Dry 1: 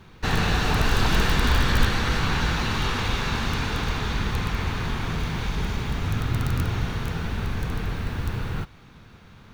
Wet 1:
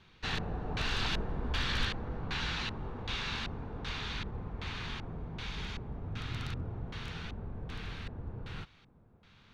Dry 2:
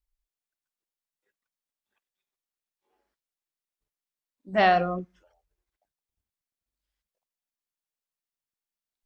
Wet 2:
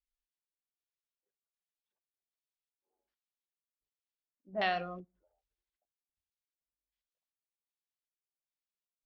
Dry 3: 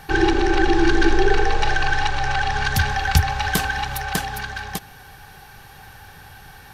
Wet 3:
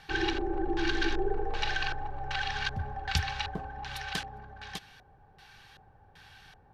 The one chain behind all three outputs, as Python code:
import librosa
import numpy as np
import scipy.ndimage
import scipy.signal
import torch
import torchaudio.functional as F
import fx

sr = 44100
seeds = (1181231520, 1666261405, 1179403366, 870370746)

y = F.preemphasis(torch.from_numpy(x), 0.8).numpy()
y = fx.filter_lfo_lowpass(y, sr, shape='square', hz=1.3, low_hz=650.0, high_hz=3500.0, q=1.2)